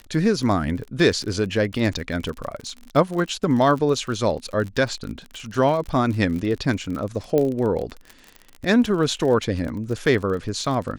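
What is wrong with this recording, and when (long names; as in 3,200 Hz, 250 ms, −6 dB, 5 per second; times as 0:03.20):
surface crackle 42 per second −28 dBFS
0:07.38: click −10 dBFS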